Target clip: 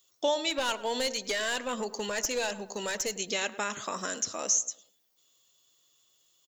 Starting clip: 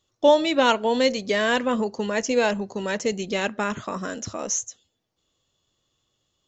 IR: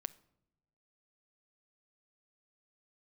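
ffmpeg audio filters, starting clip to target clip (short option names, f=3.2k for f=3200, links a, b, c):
-filter_complex "[0:a]aemphasis=mode=production:type=riaa,acompressor=threshold=-29dB:ratio=2,asplit=3[a][b][c];[a]afade=t=out:st=0.49:d=0.02[d];[b]aeval=exprs='clip(val(0),-1,0.0562)':c=same,afade=t=in:st=0.49:d=0.02,afade=t=out:st=3.12:d=0.02[e];[c]afade=t=in:st=3.12:d=0.02[f];[d][e][f]amix=inputs=3:normalize=0,asplit=2[g][h];[h]adelay=107,lowpass=f=1.8k:p=1,volume=-15dB,asplit=2[i][j];[j]adelay=107,lowpass=f=1.8k:p=1,volume=0.44,asplit=2[k][l];[l]adelay=107,lowpass=f=1.8k:p=1,volume=0.44,asplit=2[m][n];[n]adelay=107,lowpass=f=1.8k:p=1,volume=0.44[o];[g][i][k][m][o]amix=inputs=5:normalize=0,volume=-1.5dB"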